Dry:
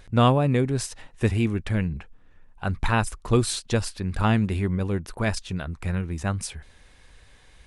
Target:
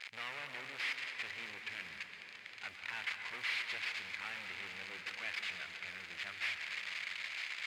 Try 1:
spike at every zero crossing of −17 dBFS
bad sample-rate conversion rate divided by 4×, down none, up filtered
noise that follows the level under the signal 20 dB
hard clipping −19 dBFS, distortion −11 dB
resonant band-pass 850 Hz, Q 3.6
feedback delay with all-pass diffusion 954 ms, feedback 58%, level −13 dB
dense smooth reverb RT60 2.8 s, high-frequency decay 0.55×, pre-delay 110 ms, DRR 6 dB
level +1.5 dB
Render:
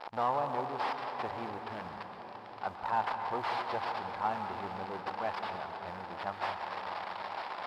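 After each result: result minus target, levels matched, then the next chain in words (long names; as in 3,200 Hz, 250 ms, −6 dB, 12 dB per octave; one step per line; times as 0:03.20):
1,000 Hz band +15.0 dB; hard clipping: distortion −7 dB
spike at every zero crossing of −17 dBFS
bad sample-rate conversion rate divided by 4×, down none, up filtered
noise that follows the level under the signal 20 dB
hard clipping −19 dBFS, distortion −11 dB
resonant band-pass 2,200 Hz, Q 3.6
feedback delay with all-pass diffusion 954 ms, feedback 58%, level −13 dB
dense smooth reverb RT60 2.8 s, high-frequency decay 0.55×, pre-delay 110 ms, DRR 6 dB
level +1.5 dB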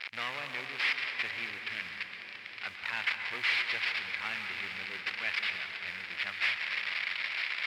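hard clipping: distortion −7 dB
spike at every zero crossing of −17 dBFS
bad sample-rate conversion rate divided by 4×, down none, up filtered
noise that follows the level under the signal 20 dB
hard clipping −29 dBFS, distortion −4 dB
resonant band-pass 2,200 Hz, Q 3.6
feedback delay with all-pass diffusion 954 ms, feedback 58%, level −13 dB
dense smooth reverb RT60 2.8 s, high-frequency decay 0.55×, pre-delay 110 ms, DRR 6 dB
level +1.5 dB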